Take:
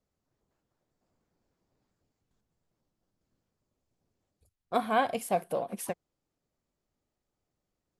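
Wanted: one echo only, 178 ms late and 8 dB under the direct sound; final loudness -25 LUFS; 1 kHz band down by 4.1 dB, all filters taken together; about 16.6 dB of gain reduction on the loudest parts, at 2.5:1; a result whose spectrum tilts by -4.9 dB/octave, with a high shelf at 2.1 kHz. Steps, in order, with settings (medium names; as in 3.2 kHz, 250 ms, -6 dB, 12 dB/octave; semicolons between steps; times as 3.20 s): peaking EQ 1 kHz -5 dB; treble shelf 2.1 kHz -7.5 dB; compression 2.5:1, threshold -51 dBFS; delay 178 ms -8 dB; trim +23.5 dB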